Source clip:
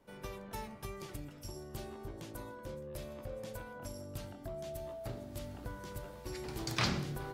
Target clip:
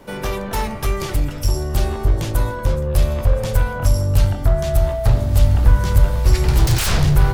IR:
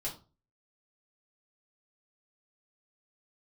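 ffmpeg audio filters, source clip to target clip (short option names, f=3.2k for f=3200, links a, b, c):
-af "aeval=exprs='0.141*sin(PI/2*10*val(0)/0.141)':c=same,asubboost=boost=10.5:cutoff=86,volume=-1dB"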